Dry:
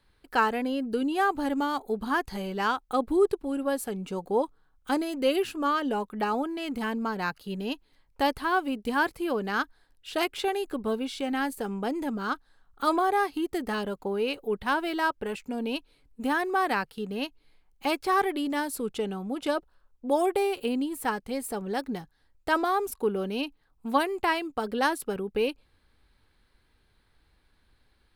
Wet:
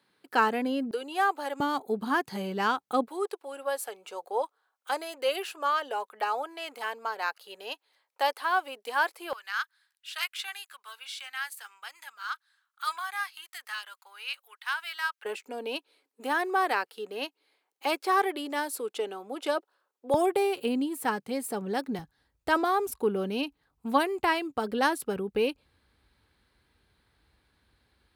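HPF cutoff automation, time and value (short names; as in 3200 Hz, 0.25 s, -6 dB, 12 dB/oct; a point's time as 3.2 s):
HPF 24 dB/oct
160 Hz
from 0.91 s 450 Hz
from 1.6 s 130 Hz
from 3.08 s 520 Hz
from 9.33 s 1300 Hz
from 15.25 s 350 Hz
from 20.14 s 120 Hz
from 21.99 s 49 Hz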